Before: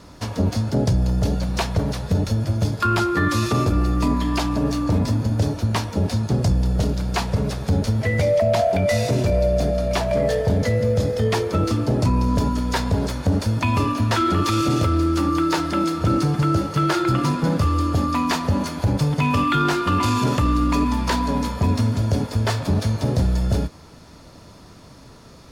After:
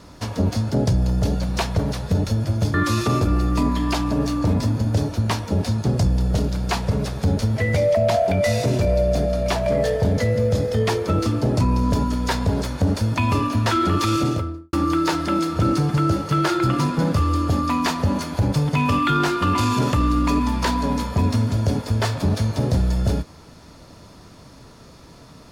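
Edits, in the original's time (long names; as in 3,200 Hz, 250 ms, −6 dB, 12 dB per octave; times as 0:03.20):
0:02.74–0:03.19: remove
0:14.59–0:15.18: fade out and dull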